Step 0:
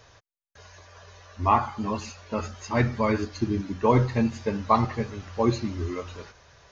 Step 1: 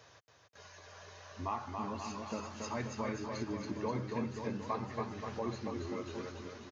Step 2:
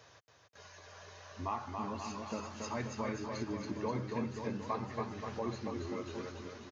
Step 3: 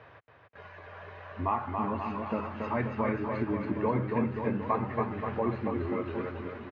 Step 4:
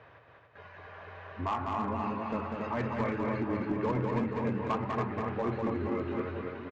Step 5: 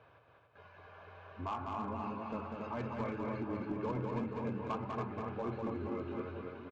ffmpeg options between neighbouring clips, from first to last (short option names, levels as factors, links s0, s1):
-filter_complex "[0:a]highpass=120,acompressor=threshold=0.0158:ratio=2.5,asplit=2[s0][s1];[s1]aecho=0:1:280|532|758.8|962.9|1147:0.631|0.398|0.251|0.158|0.1[s2];[s0][s2]amix=inputs=2:normalize=0,volume=0.596"
-af anull
-af "lowpass=f=2500:w=0.5412,lowpass=f=2500:w=1.3066,volume=2.51"
-af "aresample=16000,asoftclip=type=hard:threshold=0.0668,aresample=44100,aecho=1:1:197:0.631,volume=0.794"
-af "bandreject=f=1900:w=5,volume=0.473"